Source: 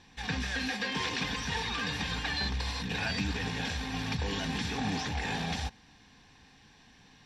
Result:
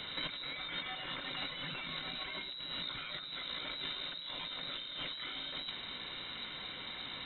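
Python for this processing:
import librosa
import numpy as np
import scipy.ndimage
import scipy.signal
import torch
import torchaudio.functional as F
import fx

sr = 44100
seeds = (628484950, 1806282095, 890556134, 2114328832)

y = fx.freq_invert(x, sr, carrier_hz=3900)
y = fx.over_compress(y, sr, threshold_db=-45.0, ratio=-1.0)
y = F.gain(torch.from_numpy(y), 3.0).numpy()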